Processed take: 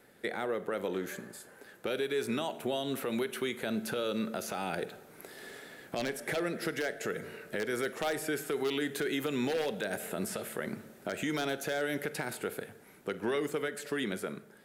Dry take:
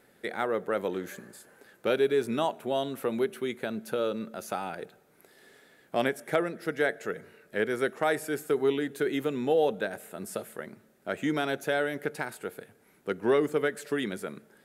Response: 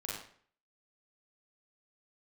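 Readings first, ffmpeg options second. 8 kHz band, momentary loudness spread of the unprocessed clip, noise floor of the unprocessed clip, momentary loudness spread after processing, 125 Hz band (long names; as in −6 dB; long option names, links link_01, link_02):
+3.0 dB, 15 LU, −63 dBFS, 10 LU, −2.0 dB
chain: -filter_complex "[0:a]dynaudnorm=framelen=530:gausssize=11:maxgain=11dB,aeval=exprs='0.355*(abs(mod(val(0)/0.355+3,4)-2)-1)':channel_layout=same,acrossover=split=700|1800|4400[link_01][link_02][link_03][link_04];[link_01]acompressor=threshold=-31dB:ratio=4[link_05];[link_02]acompressor=threshold=-41dB:ratio=4[link_06];[link_03]acompressor=threshold=-37dB:ratio=4[link_07];[link_04]acompressor=threshold=-43dB:ratio=4[link_08];[link_05][link_06][link_07][link_08]amix=inputs=4:normalize=0,alimiter=level_in=0.5dB:limit=-24dB:level=0:latency=1:release=76,volume=-0.5dB,asplit=2[link_09][link_10];[1:a]atrim=start_sample=2205[link_11];[link_10][link_11]afir=irnorm=-1:irlink=0,volume=-15dB[link_12];[link_09][link_12]amix=inputs=2:normalize=0"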